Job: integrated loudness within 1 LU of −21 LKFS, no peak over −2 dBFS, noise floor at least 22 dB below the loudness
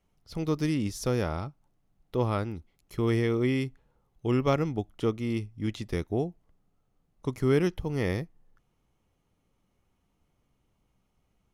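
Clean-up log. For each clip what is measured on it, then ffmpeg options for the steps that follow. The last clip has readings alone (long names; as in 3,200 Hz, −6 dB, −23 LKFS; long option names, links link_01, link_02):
integrated loudness −29.5 LKFS; sample peak −11.5 dBFS; target loudness −21.0 LKFS
→ -af "volume=8.5dB"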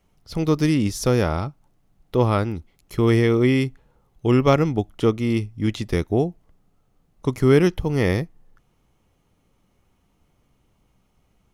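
integrated loudness −21.5 LKFS; sample peak −3.0 dBFS; background noise floor −65 dBFS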